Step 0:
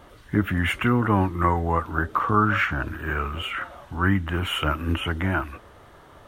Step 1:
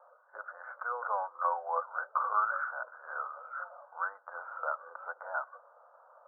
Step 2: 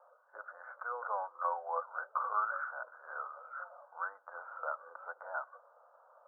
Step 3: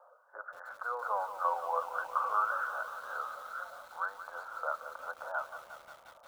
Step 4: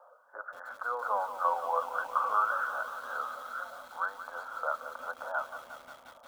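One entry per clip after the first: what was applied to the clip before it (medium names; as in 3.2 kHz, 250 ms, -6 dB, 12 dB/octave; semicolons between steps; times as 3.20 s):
Chebyshev band-pass 500–1500 Hz, order 5; trim -6.5 dB
bass shelf 340 Hz +6.5 dB; trim -4.5 dB
bit-crushed delay 178 ms, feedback 80%, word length 9-bit, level -11 dB; trim +3 dB
small resonant body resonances 250/3300 Hz, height 13 dB, ringing for 95 ms; trim +2.5 dB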